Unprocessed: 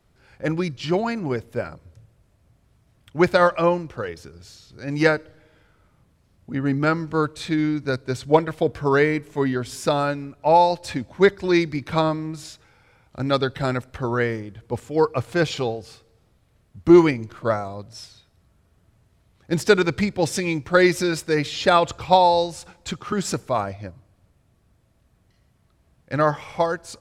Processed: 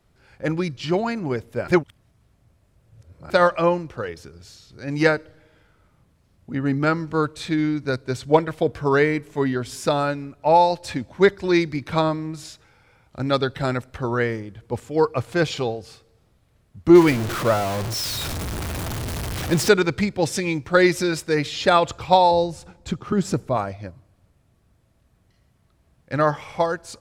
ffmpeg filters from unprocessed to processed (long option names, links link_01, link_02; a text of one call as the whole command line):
ffmpeg -i in.wav -filter_complex "[0:a]asettb=1/sr,asplit=3[link_01][link_02][link_03];[link_01]atrim=end=16.954[link_04];[link_02]atrim=start=16.95:end=19.69,asetpts=PTS-STARTPTS,afade=type=in:duration=0.004:curve=qsin,afade=type=out:start_time=2.736:duration=0.004:curve=qsin,aeval=exprs='val(0)+0.5*0.0794*sgn(val(0))':channel_layout=same[link_05];[link_03]atrim=start=19.686[link_06];[link_04][link_05]acrossfade=duration=0.004:curve1=hsin:curve2=qsin[link_07];[link_07][link_06]acrossfade=duration=0.004:curve1=qsin:curve2=hsin,asettb=1/sr,asplit=3[link_08][link_09][link_10];[link_08]atrim=end=22.314[link_11];[link_09]atrim=start=22.31:end=23.57,asetpts=PTS-STARTPTS,afade=type=in:duration=0.004:curve=qsin,afade=type=out:start_time=1.256:duration=0.004:curve=qsin,tiltshelf=frequency=640:gain=5.5[link_12];[link_10]atrim=start=23.566[link_13];[link_11][link_12]acrossfade=duration=0.004:curve1=hsin:curve2=qsin[link_14];[link_14][link_13]acrossfade=duration=0.004:curve1=qsin:curve2=hsin,asplit=3[link_15][link_16][link_17];[link_15]atrim=end=1.682[link_18];[link_16]atrim=start=1.678:end=3.302,asetpts=PTS-STARTPTS,areverse[link_19];[link_17]atrim=start=3.298[link_20];[link_18][link_19]acrossfade=duration=0.004:curve1=hsin:curve2=hsin[link_21];[link_21][link_20]acrossfade=duration=0.004:curve1=hsin:curve2=hsin" out.wav